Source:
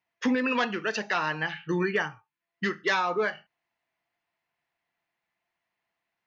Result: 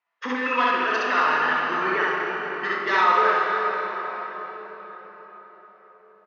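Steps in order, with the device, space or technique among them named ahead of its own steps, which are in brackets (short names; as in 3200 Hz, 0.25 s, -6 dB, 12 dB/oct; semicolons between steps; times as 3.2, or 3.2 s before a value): station announcement (BPF 380–4400 Hz; bell 1200 Hz +10 dB 0.47 oct; loudspeakers at several distances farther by 11 m -10 dB, 22 m 0 dB, 79 m -11 dB; reverb RT60 5.2 s, pre-delay 28 ms, DRR -1.5 dB); gain -2 dB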